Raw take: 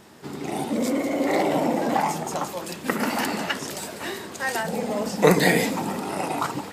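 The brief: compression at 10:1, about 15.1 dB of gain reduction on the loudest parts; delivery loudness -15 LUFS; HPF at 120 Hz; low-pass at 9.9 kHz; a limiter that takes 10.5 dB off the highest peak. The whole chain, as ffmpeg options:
-af "highpass=120,lowpass=9900,acompressor=threshold=0.0447:ratio=10,volume=8.41,alimiter=limit=0.531:level=0:latency=1"

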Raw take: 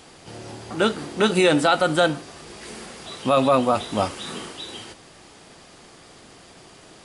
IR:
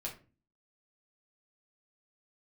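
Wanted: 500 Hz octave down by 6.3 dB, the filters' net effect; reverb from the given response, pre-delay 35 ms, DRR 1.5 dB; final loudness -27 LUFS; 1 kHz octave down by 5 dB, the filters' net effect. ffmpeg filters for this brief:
-filter_complex "[0:a]equalizer=f=500:t=o:g=-6.5,equalizer=f=1000:t=o:g=-5,asplit=2[s0][s1];[1:a]atrim=start_sample=2205,adelay=35[s2];[s1][s2]afir=irnorm=-1:irlink=0,volume=0.891[s3];[s0][s3]amix=inputs=2:normalize=0,volume=0.596"

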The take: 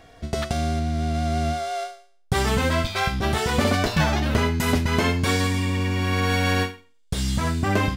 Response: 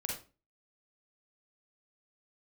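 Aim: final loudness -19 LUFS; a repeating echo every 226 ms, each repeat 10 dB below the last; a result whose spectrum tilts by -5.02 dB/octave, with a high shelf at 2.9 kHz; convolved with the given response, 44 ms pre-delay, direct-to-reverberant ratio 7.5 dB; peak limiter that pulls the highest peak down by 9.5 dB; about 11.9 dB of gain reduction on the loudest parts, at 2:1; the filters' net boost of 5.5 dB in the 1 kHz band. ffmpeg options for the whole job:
-filter_complex "[0:a]equalizer=f=1000:t=o:g=8,highshelf=f=2900:g=-5,acompressor=threshold=0.0126:ratio=2,alimiter=level_in=1.41:limit=0.0631:level=0:latency=1,volume=0.708,aecho=1:1:226|452|678|904:0.316|0.101|0.0324|0.0104,asplit=2[s0][s1];[1:a]atrim=start_sample=2205,adelay=44[s2];[s1][s2]afir=irnorm=-1:irlink=0,volume=0.355[s3];[s0][s3]amix=inputs=2:normalize=0,volume=6.31"

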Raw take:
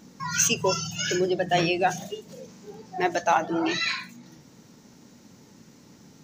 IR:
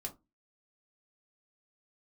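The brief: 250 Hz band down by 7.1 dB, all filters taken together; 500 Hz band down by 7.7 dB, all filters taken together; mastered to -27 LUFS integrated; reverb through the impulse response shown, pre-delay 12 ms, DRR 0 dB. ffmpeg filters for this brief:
-filter_complex "[0:a]equalizer=f=250:t=o:g=-7,equalizer=f=500:t=o:g=-9,asplit=2[s0][s1];[1:a]atrim=start_sample=2205,adelay=12[s2];[s1][s2]afir=irnorm=-1:irlink=0,volume=1.26[s3];[s0][s3]amix=inputs=2:normalize=0,volume=0.708"

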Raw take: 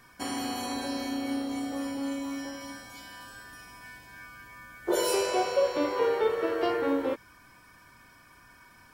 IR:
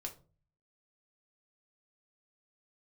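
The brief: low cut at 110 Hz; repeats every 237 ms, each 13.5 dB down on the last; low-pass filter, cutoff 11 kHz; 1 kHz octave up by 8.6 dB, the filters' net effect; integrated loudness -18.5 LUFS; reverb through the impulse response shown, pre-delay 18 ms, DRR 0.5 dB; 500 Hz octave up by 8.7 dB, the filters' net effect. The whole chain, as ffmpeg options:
-filter_complex "[0:a]highpass=110,lowpass=11000,equalizer=f=500:t=o:g=8,equalizer=f=1000:t=o:g=8,aecho=1:1:237|474:0.211|0.0444,asplit=2[s0][s1];[1:a]atrim=start_sample=2205,adelay=18[s2];[s1][s2]afir=irnorm=-1:irlink=0,volume=1.26[s3];[s0][s3]amix=inputs=2:normalize=0,volume=1.19"

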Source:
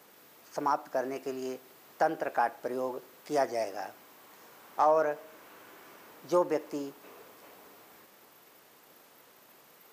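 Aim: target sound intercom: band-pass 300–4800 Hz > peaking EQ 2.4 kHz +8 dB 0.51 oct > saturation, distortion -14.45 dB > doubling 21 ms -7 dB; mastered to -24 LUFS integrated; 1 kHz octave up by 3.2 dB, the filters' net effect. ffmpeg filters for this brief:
-filter_complex "[0:a]highpass=300,lowpass=4800,equalizer=f=1000:t=o:g=4,equalizer=f=2400:t=o:w=0.51:g=8,asoftclip=threshold=0.119,asplit=2[s0][s1];[s1]adelay=21,volume=0.447[s2];[s0][s2]amix=inputs=2:normalize=0,volume=2.37"

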